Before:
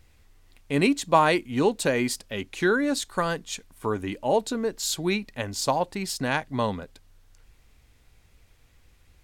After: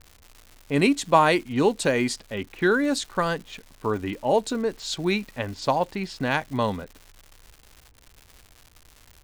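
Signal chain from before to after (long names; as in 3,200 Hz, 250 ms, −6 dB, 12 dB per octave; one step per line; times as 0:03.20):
low-pass that shuts in the quiet parts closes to 940 Hz, open at −20 dBFS
surface crackle 260 per second −38 dBFS
level +1.5 dB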